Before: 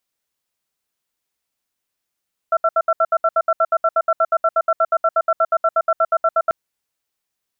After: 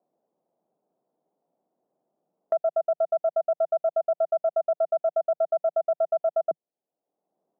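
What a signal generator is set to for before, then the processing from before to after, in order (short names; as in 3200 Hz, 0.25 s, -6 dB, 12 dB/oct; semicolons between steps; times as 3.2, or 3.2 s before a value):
cadence 654 Hz, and 1350 Hz, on 0.05 s, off 0.07 s, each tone -15 dBFS 3.99 s
elliptic band-pass 160–710 Hz, stop band 60 dB; low shelf 470 Hz -9.5 dB; three-band squash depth 70%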